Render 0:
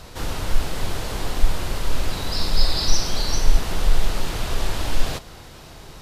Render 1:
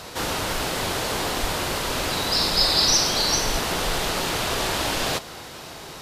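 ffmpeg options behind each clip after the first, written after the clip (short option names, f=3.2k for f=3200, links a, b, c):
-af "highpass=f=290:p=1,volume=6.5dB"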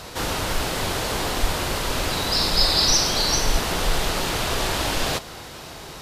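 -af "lowshelf=f=79:g=8.5"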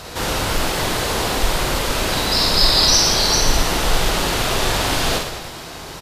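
-af "aecho=1:1:50|115|199.5|309.4|452.2:0.631|0.398|0.251|0.158|0.1,volume=2.5dB"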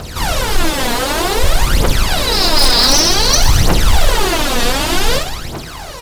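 -filter_complex "[0:a]aphaser=in_gain=1:out_gain=1:delay=4.3:decay=0.74:speed=0.54:type=triangular,asplit=2[a][b];[b]acrusher=samples=39:mix=1:aa=0.000001:lfo=1:lforange=62.4:lforate=0.65,volume=-10.5dB[c];[a][c]amix=inputs=2:normalize=0,aeval=exprs='0.708*(abs(mod(val(0)/0.708+3,4)-2)-1)':c=same"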